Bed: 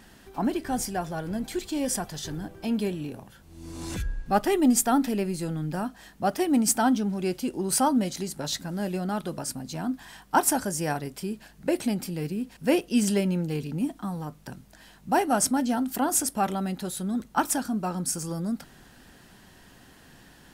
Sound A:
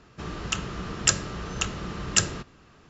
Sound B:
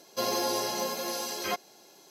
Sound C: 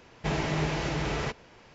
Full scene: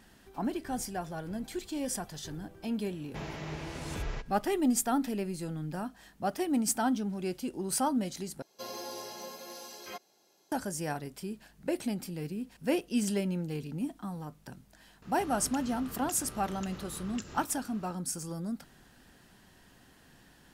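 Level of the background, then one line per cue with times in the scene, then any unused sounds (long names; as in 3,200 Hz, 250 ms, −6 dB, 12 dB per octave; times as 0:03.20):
bed −6.5 dB
0:02.90: mix in C −11 dB
0:08.42: overwrite with B −12 dB
0:15.02: mix in A −0.5 dB + downward compressor, threshold −42 dBFS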